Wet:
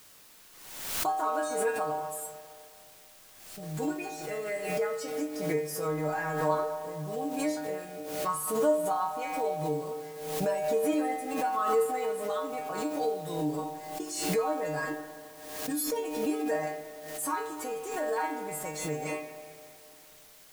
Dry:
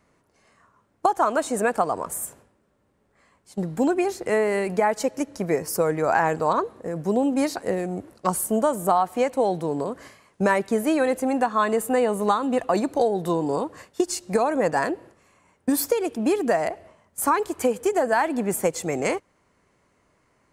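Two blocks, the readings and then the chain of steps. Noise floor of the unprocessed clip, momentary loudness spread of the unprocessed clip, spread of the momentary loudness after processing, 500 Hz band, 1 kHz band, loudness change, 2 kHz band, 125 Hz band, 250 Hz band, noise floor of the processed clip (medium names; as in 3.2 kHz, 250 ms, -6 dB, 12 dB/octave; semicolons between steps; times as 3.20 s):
-67 dBFS, 8 LU, 17 LU, -7.5 dB, -7.5 dB, -8.0 dB, -8.5 dB, -6.0 dB, -9.5 dB, -54 dBFS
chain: inharmonic resonator 150 Hz, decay 0.58 s, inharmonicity 0.002; word length cut 10-bit, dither triangular; spring tank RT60 2.6 s, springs 31/51/58 ms, chirp 55 ms, DRR 8.5 dB; swell ahead of each attack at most 51 dB/s; trim +5 dB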